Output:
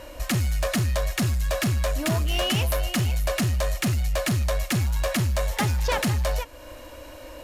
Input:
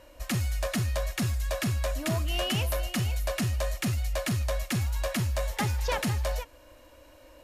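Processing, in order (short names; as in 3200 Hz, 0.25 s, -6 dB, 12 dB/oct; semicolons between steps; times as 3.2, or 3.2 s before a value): in parallel at +1 dB: compressor, threshold -43 dBFS, peak gain reduction 16 dB; on the sum: soft clip -24 dBFS, distortion -20 dB; gain +5.5 dB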